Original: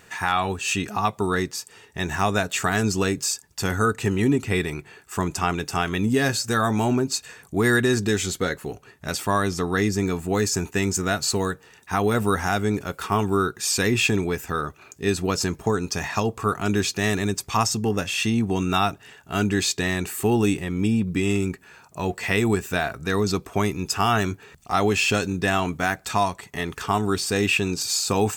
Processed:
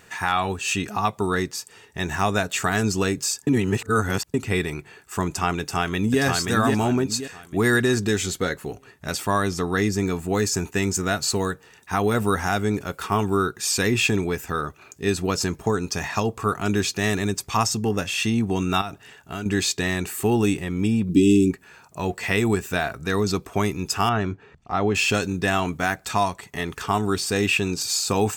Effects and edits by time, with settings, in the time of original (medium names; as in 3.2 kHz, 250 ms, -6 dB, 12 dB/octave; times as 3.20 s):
3.47–4.34 s: reverse
5.59–6.21 s: echo throw 530 ms, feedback 35%, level -3 dB
18.81–19.46 s: compression, threshold -27 dBFS
21.09–21.51 s: FFT filter 130 Hz 0 dB, 330 Hz +12 dB, 840 Hz -24 dB, 1.9 kHz -16 dB, 2.9 kHz +2 dB
24.09–24.95 s: tape spacing loss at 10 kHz 25 dB